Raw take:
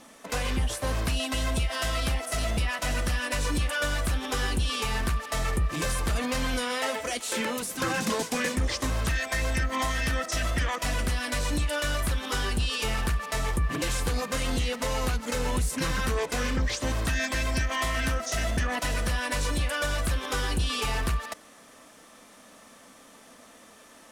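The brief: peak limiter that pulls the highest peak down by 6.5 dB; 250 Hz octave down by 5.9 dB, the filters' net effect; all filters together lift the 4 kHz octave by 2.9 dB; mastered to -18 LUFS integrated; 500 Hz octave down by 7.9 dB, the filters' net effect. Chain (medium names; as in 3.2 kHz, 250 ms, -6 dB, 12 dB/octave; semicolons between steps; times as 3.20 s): peaking EQ 250 Hz -5.5 dB; peaking EQ 500 Hz -8.5 dB; peaking EQ 4 kHz +4 dB; trim +14 dB; peak limiter -9 dBFS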